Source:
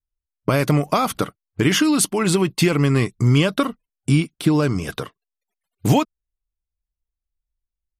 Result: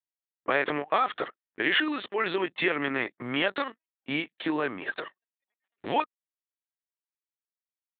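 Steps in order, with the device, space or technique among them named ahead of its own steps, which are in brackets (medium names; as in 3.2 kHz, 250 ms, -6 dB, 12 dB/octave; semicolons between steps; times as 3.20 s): 1.25–2.03 s: bass shelf 140 Hz -6 dB; talking toy (LPC vocoder at 8 kHz pitch kept; high-pass 430 Hz 12 dB/octave; peaking EQ 1.8 kHz +10 dB 0.34 oct); trim -4.5 dB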